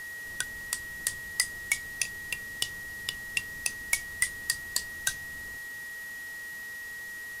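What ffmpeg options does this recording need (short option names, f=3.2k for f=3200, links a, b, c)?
-af "adeclick=t=4,bandreject=f=438.8:t=h:w=4,bandreject=f=877.6:t=h:w=4,bandreject=f=1.3164k:t=h:w=4,bandreject=f=1.7552k:t=h:w=4,bandreject=f=1.9k:w=30,afwtdn=0.0035"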